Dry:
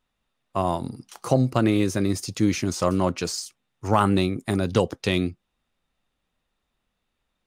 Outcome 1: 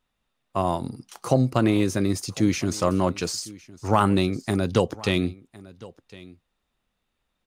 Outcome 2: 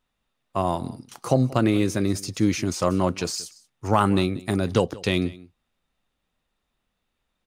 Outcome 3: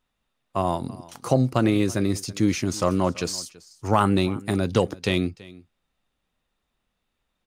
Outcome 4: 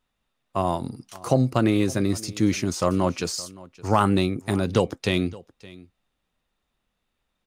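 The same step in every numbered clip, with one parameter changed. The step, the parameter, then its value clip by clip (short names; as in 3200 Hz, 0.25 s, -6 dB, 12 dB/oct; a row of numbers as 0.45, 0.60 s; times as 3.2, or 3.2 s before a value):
echo, time: 1.058, 0.182, 0.331, 0.567 s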